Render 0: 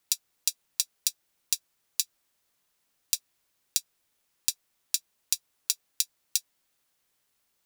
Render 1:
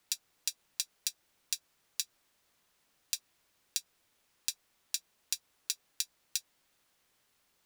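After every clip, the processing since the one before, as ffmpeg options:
-filter_complex "[0:a]highshelf=f=6.5k:g=-7,acrossover=split=130|1600[a][b][c];[c]alimiter=limit=-17dB:level=0:latency=1:release=118[d];[a][b][d]amix=inputs=3:normalize=0,volume=5dB"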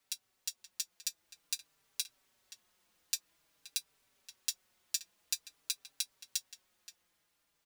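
-filter_complex "[0:a]dynaudnorm=f=230:g=11:m=4dB,asplit=2[a][b];[b]adelay=524.8,volume=-10dB,highshelf=f=4k:g=-11.8[c];[a][c]amix=inputs=2:normalize=0,asplit=2[d][e];[e]adelay=4.7,afreqshift=-0.5[f];[d][f]amix=inputs=2:normalize=1,volume=-1.5dB"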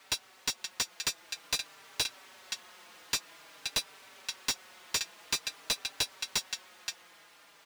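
-filter_complex "[0:a]asplit=2[a][b];[b]highpass=f=720:p=1,volume=33dB,asoftclip=type=tanh:threshold=-11.5dB[c];[a][c]amix=inputs=2:normalize=0,lowpass=f=2.1k:p=1,volume=-6dB"

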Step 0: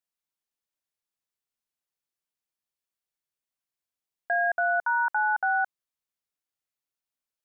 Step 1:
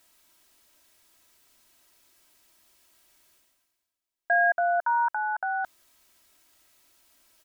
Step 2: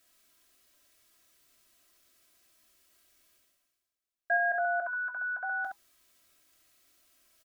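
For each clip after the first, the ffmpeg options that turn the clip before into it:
-af "areverse,acompressor=mode=upward:threshold=-42dB:ratio=2.5,areverse,aecho=1:1:3.1:0.55"
-filter_complex "[0:a]asuperstop=centerf=900:order=20:qfactor=5.3,asplit=2[a][b];[b]aecho=0:1:19|67:0.316|0.596[c];[a][c]amix=inputs=2:normalize=0,volume=-5.5dB"

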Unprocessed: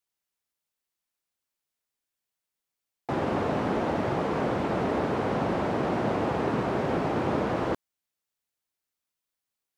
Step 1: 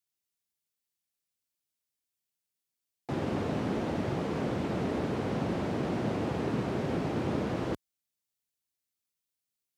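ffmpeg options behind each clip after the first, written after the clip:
-af "highpass=53,equalizer=f=970:t=o:w=2.6:g=-9"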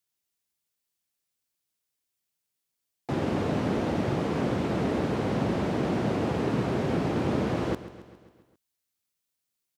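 -af "aecho=1:1:135|270|405|540|675|810:0.178|0.107|0.064|0.0384|0.023|0.0138,volume=4dB"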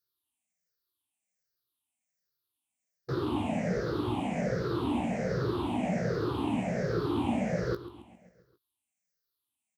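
-filter_complex "[0:a]afftfilt=real='re*pow(10,20/40*sin(2*PI*(0.58*log(max(b,1)*sr/1024/100)/log(2)-(-1.3)*(pts-256)/sr)))':imag='im*pow(10,20/40*sin(2*PI*(0.58*log(max(b,1)*sr/1024/100)/log(2)-(-1.3)*(pts-256)/sr)))':win_size=1024:overlap=0.75,asplit=2[a][b];[b]adelay=17,volume=-9dB[c];[a][c]amix=inputs=2:normalize=0,volume=-8dB"

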